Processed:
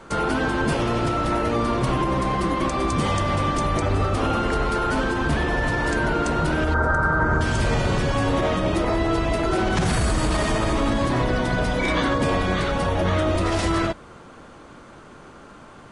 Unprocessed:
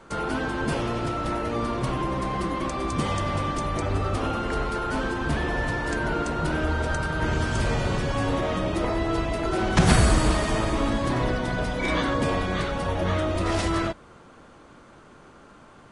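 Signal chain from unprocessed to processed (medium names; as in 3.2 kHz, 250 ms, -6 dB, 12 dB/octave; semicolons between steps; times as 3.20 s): peak limiter -18.5 dBFS, peak gain reduction 12 dB; 6.74–7.41 s: resonant high shelf 2 kHz -12 dB, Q 3; trim +5.5 dB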